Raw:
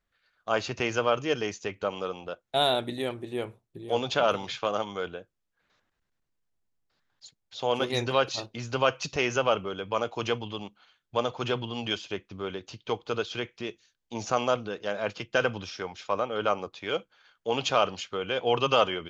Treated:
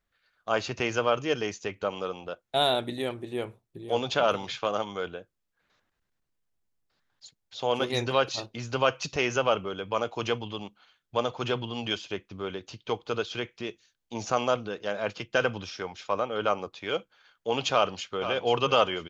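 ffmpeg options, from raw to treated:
ffmpeg -i in.wav -filter_complex "[0:a]asplit=2[link_01][link_02];[link_02]afade=type=in:start_time=17.72:duration=0.01,afade=type=out:start_time=18.27:duration=0.01,aecho=0:1:490|980|1470|1960:0.316228|0.11068|0.0387379|0.0135583[link_03];[link_01][link_03]amix=inputs=2:normalize=0" out.wav

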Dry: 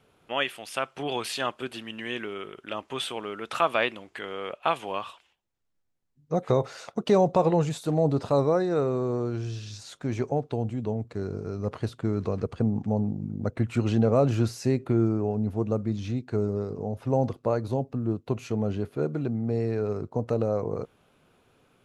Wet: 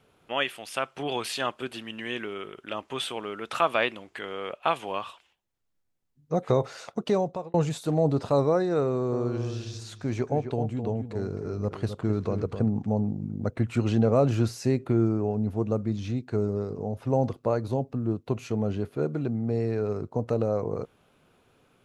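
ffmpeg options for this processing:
ffmpeg -i in.wav -filter_complex "[0:a]asettb=1/sr,asplit=3[link_01][link_02][link_03];[link_01]atrim=end=8.864[link_04];[link_02]atrim=start=8.86:end=12.69,asetpts=PTS-STARTPTS,afade=type=in:duration=0.004:curve=qsin,afade=type=out:start_time=3.826:duration=0.004:curve=qsin,asplit=2[link_05][link_06];[link_06]adelay=261,lowpass=frequency=2000:poles=1,volume=-8dB,asplit=2[link_07][link_08];[link_08]adelay=261,lowpass=frequency=2000:poles=1,volume=0.15[link_09];[link_05][link_07][link_09]amix=inputs=3:normalize=0,atrim=end_sample=168903[link_10];[link_03]atrim=start=12.686[link_11];[link_04][link_10]acrossfade=duration=0.004:curve1=hsin:curve2=qsin[link_12];[link_12][link_11]acrossfade=duration=0.004:curve1=qsin:curve2=hsin,asplit=2[link_13][link_14];[link_13]atrim=end=7.54,asetpts=PTS-STARTPTS,afade=type=out:start_time=6.92:duration=0.62[link_15];[link_14]atrim=start=7.54,asetpts=PTS-STARTPTS,afade=type=in:duration=0.004:curve=hsin[link_16];[link_15][link_16]concat=n=2:v=0:a=1" out.wav

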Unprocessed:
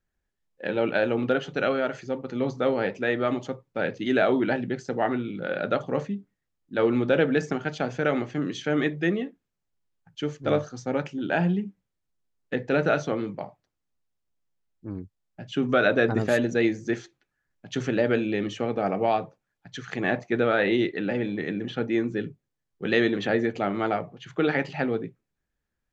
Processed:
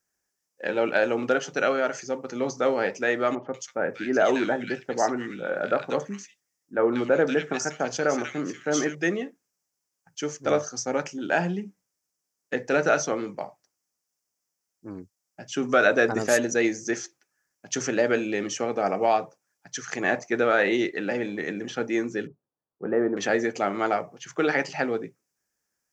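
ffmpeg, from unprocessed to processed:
ffmpeg -i in.wav -filter_complex "[0:a]asettb=1/sr,asplit=3[link_01][link_02][link_03];[link_01]atrim=end=3.354[link_04];[link_02]atrim=start=3.35:end=8.95,asetpts=PTS-STARTPTS,afade=type=in:duration=0.004:curve=qsin,afade=type=out:start_time=5.596:duration=0.004:curve=qsin,acrossover=split=1900[link_05][link_06];[link_06]adelay=190[link_07];[link_05][link_07]amix=inputs=2:normalize=0,atrim=end_sample=246960[link_08];[link_03]atrim=start=8.946[link_09];[link_04][link_08]acrossfade=duration=0.004:curve1=hsin:curve2=qsin[link_10];[link_10][link_09]acrossfade=duration=0.004:curve1=qsin:curve2=hsin,asettb=1/sr,asplit=3[link_11][link_12][link_13];[link_11]atrim=end=22.274[link_14];[link_12]atrim=start=22.27:end=23.17,asetpts=PTS-STARTPTS,afade=type=in:duration=0.004:curve=qsin,afade=type=out:start_time=0.896:duration=0.004:curve=qsin,lowpass=frequency=1200:width=0.5412,lowpass=frequency=1200:width=1.3066[link_15];[link_13]atrim=start=23.166[link_16];[link_14][link_15]acrossfade=duration=0.004:curve1=hsin:curve2=qsin[link_17];[link_17][link_16]acrossfade=duration=0.004:curve1=qsin:curve2=hsin,highpass=frequency=500:poles=1,highshelf=frequency=4600:width_type=q:width=3:gain=6.5,volume=4dB" out.wav

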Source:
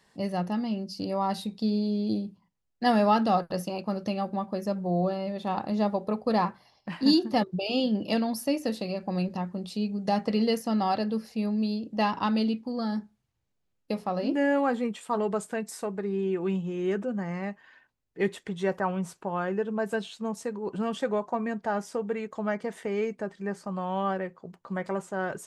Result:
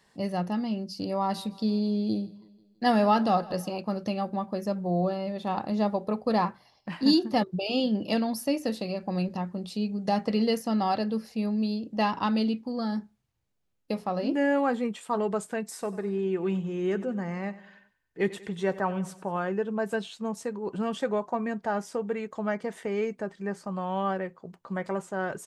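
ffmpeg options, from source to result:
ffmpeg -i in.wav -filter_complex "[0:a]asplit=3[link_01][link_02][link_03];[link_01]afade=type=out:start_time=1.33:duration=0.02[link_04];[link_02]aecho=1:1:163|326|489|652:0.0841|0.0438|0.0228|0.0118,afade=type=in:start_time=1.33:duration=0.02,afade=type=out:start_time=3.73:duration=0.02[link_05];[link_03]afade=type=in:start_time=3.73:duration=0.02[link_06];[link_04][link_05][link_06]amix=inputs=3:normalize=0,asplit=3[link_07][link_08][link_09];[link_07]afade=type=out:start_time=15.81:duration=0.02[link_10];[link_08]aecho=1:1:95|190|285|380:0.141|0.0678|0.0325|0.0156,afade=type=in:start_time=15.81:duration=0.02,afade=type=out:start_time=19.47:duration=0.02[link_11];[link_09]afade=type=in:start_time=19.47:duration=0.02[link_12];[link_10][link_11][link_12]amix=inputs=3:normalize=0" out.wav

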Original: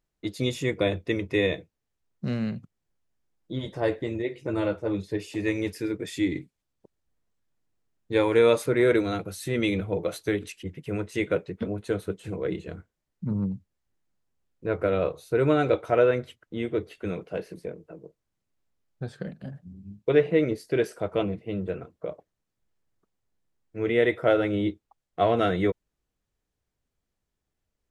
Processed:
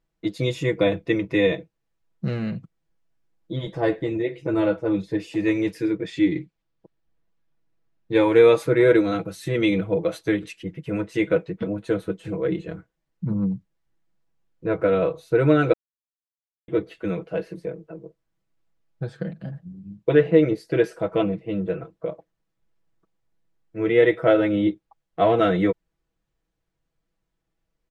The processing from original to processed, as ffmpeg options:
ffmpeg -i in.wav -filter_complex "[0:a]asettb=1/sr,asplit=3[link_01][link_02][link_03];[link_01]atrim=end=5.904[link_04];[link_02]atrim=start=5.9:end=8.15,asetpts=PTS-STARTPTS,afade=type=in:duration=0.004:curve=qsin,afade=type=out:start_time=2.246:duration=0.004:curve=qsin,lowpass=5800[link_05];[link_03]atrim=start=8.146[link_06];[link_04][link_05]acrossfade=duration=0.004:curve1=hsin:curve2=qsin[link_07];[link_07][link_06]acrossfade=duration=0.004:curve1=qsin:curve2=hsin,asplit=3[link_08][link_09][link_10];[link_08]atrim=end=15.73,asetpts=PTS-STARTPTS,afade=type=out:start_time=15.726:duration=0.004:curve=hsin[link_11];[link_09]atrim=start=15.73:end=16.68,asetpts=PTS-STARTPTS,volume=0[link_12];[link_10]atrim=start=16.68,asetpts=PTS-STARTPTS,afade=type=in:duration=0.004:curve=hsin[link_13];[link_11][link_12][link_13]concat=n=3:v=0:a=1,highshelf=frequency=6000:gain=-11.5,aecho=1:1:6.1:0.65,volume=2.5dB" out.wav

